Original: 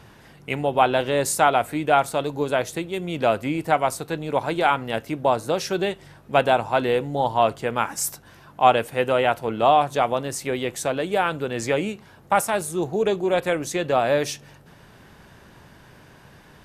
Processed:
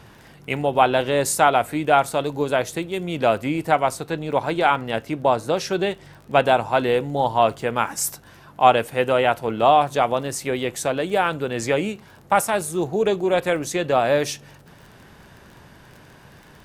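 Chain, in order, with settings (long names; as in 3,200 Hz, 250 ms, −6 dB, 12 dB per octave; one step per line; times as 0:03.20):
0:03.75–0:06.44: high-shelf EQ 10,000 Hz −7 dB
surface crackle 24 per second −38 dBFS
level +1.5 dB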